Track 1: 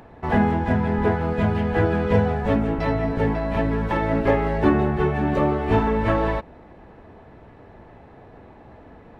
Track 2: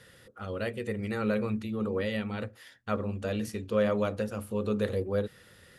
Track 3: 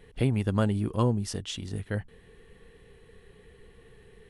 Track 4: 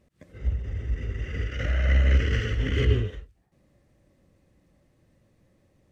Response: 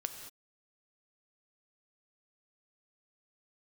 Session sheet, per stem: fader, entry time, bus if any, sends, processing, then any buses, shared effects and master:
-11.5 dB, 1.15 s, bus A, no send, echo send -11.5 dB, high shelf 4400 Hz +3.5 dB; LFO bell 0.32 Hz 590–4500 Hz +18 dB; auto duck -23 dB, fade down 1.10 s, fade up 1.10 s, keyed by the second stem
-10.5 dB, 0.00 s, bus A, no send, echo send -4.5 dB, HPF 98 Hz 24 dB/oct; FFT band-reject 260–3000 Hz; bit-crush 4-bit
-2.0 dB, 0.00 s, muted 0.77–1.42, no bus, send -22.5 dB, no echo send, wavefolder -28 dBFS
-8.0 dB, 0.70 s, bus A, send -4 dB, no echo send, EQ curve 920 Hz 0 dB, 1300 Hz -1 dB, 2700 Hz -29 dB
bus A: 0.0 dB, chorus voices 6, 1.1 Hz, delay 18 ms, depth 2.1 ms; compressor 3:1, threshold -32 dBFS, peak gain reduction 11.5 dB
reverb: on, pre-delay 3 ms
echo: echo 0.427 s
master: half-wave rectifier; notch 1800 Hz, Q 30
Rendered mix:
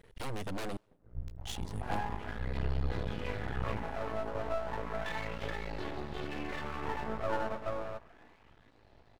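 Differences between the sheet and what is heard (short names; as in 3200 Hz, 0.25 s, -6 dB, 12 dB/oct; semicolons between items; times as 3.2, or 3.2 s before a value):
stem 4 -8.0 dB -> -15.0 dB; master: missing notch 1800 Hz, Q 30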